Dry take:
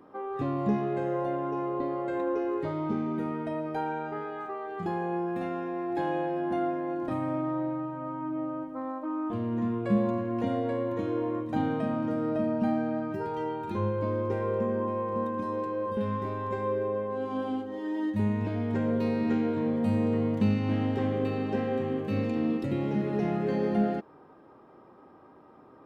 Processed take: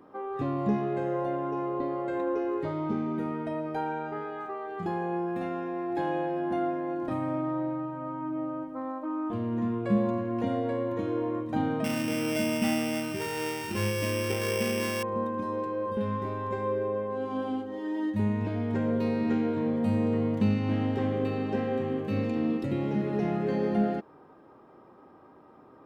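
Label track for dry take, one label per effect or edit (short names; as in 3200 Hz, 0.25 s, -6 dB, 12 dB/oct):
11.840000	15.030000	sample sorter in blocks of 16 samples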